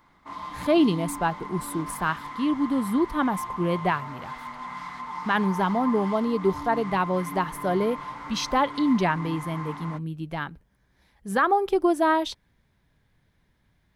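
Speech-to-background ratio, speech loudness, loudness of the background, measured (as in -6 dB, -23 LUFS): 10.5 dB, -25.5 LUFS, -36.0 LUFS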